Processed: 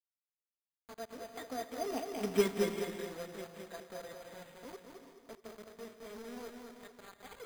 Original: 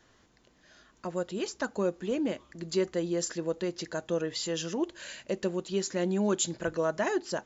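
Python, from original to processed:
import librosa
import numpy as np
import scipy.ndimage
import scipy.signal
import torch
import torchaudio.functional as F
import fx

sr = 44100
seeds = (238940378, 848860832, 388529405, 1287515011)

y = fx.pitch_glide(x, sr, semitones=6.5, runs='starting unshifted')
y = fx.doppler_pass(y, sr, speed_mps=51, closest_m=6.8, pass_at_s=2.31)
y = scipy.signal.sosfilt(scipy.signal.butter(2, 230.0, 'highpass', fs=sr, output='sos'), y)
y = fx.high_shelf(y, sr, hz=5700.0, db=5.0)
y = y + 0.7 * np.pad(y, (int(4.3 * sr / 1000.0), 0))[:len(y)]
y = fx.dynamic_eq(y, sr, hz=500.0, q=2.9, threshold_db=-51.0, ratio=4.0, max_db=-7)
y = fx.quant_companded(y, sr, bits=4)
y = y + 10.0 ** (-5.0 / 20.0) * np.pad(y, (int(215 * sr / 1000.0), 0))[:len(y)]
y = fx.rev_gated(y, sr, seeds[0], gate_ms=450, shape='rising', drr_db=7.5)
y = np.repeat(scipy.signal.resample_poly(y, 1, 8), 8)[:len(y)]
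y = F.gain(torch.from_numpy(y), 5.0).numpy()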